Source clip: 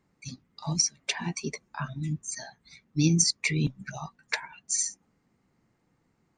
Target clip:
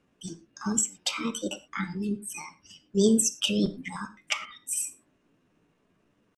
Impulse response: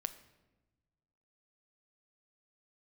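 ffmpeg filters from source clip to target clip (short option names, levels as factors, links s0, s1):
-filter_complex "[0:a]lowpass=5800,asetrate=58866,aresample=44100,atempo=0.749154[s0];[1:a]atrim=start_sample=2205,afade=t=out:st=0.17:d=0.01,atrim=end_sample=7938[s1];[s0][s1]afir=irnorm=-1:irlink=0,volume=1.5"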